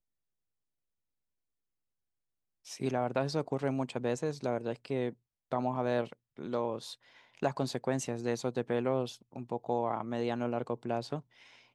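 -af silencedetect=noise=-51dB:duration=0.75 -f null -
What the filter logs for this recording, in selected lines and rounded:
silence_start: 0.00
silence_end: 2.65 | silence_duration: 2.65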